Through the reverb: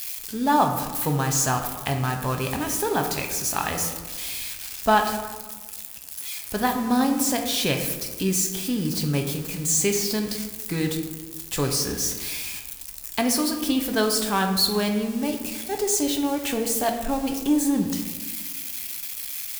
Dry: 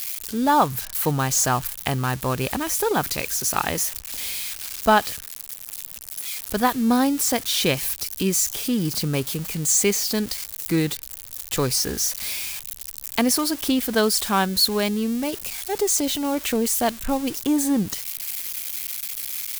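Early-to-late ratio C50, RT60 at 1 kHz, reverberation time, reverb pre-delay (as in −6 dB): 7.0 dB, 1.3 s, 1.3 s, 5 ms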